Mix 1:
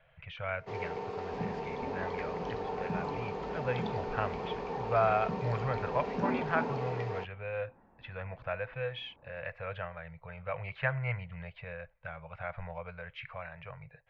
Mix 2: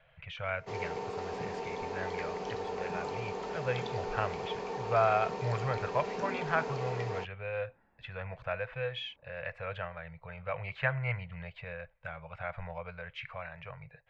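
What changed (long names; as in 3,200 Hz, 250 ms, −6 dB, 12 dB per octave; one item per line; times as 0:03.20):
second sound −9.5 dB
master: remove high-frequency loss of the air 140 metres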